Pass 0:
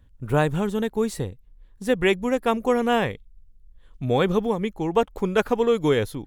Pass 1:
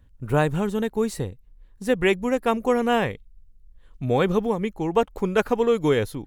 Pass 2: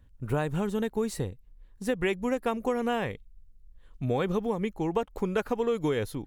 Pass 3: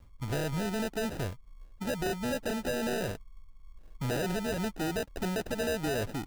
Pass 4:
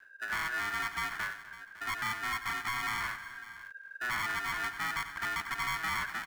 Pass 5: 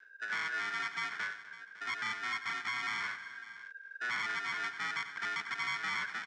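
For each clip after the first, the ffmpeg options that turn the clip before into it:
-af "bandreject=f=3.4k:w=16"
-af "acompressor=threshold=-21dB:ratio=6,volume=-2.5dB"
-af "acrusher=samples=40:mix=1:aa=0.000001,asoftclip=type=tanh:threshold=-30.5dB,volume=2.5dB"
-af "aecho=1:1:91|249|556:0.224|0.158|0.141,aeval=exprs='val(0)*sin(2*PI*1600*n/s)':c=same"
-af "highpass=140,equalizer=f=200:t=q:w=4:g=4,equalizer=f=450:t=q:w=4:g=9,equalizer=f=1.5k:t=q:w=4:g=6,equalizer=f=2.2k:t=q:w=4:g=7,equalizer=f=3.5k:t=q:w=4:g=7,equalizer=f=5.4k:t=q:w=4:g=8,lowpass=f=7.9k:w=0.5412,lowpass=f=7.9k:w=1.3066,volume=-7dB"

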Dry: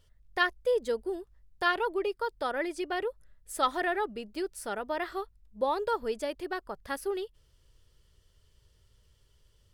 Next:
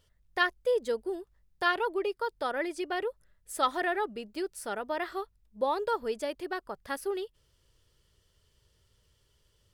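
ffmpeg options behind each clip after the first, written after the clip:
-af "lowshelf=f=67:g=-9.5"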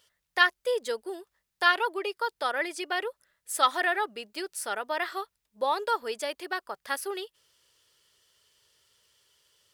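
-af "highpass=f=1.2k:p=1,volume=7.5dB"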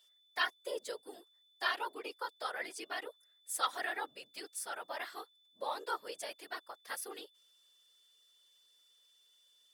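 -af "afftfilt=real='hypot(re,im)*cos(2*PI*random(0))':imag='hypot(re,im)*sin(2*PI*random(1))':win_size=512:overlap=0.75,aeval=exprs='val(0)+0.000631*sin(2*PI*3500*n/s)':c=same,bass=f=250:g=-14,treble=f=4k:g=6,volume=-5dB"

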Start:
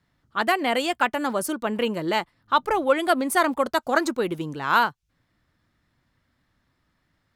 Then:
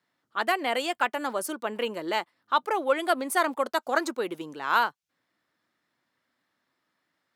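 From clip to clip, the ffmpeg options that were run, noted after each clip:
-af "highpass=320,volume=-3.5dB"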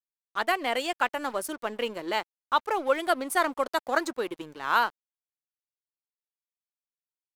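-af "aeval=exprs='sgn(val(0))*max(abs(val(0))-0.00531,0)':c=same"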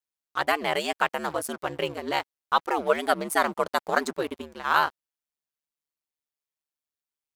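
-af "aeval=exprs='val(0)*sin(2*PI*74*n/s)':c=same,volume=4.5dB"

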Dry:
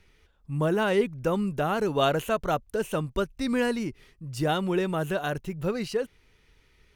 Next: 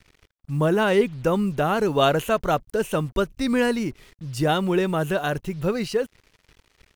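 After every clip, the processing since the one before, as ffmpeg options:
-af "acrusher=bits=8:mix=0:aa=0.5,volume=4.5dB"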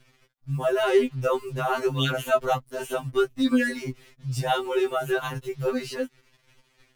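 -af "afftfilt=real='re*2.45*eq(mod(b,6),0)':imag='im*2.45*eq(mod(b,6),0)':win_size=2048:overlap=0.75"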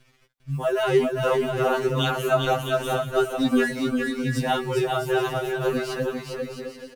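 -af "aecho=1:1:400|660|829|938.8|1010:0.631|0.398|0.251|0.158|0.1"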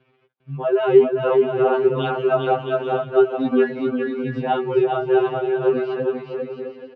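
-af "highpass=130,equalizer=f=410:t=q:w=4:g=9,equalizer=f=780:t=q:w=4:g=4,equalizer=f=1.9k:t=q:w=4:g=-8,lowpass=f=2.8k:w=0.5412,lowpass=f=2.8k:w=1.3066"

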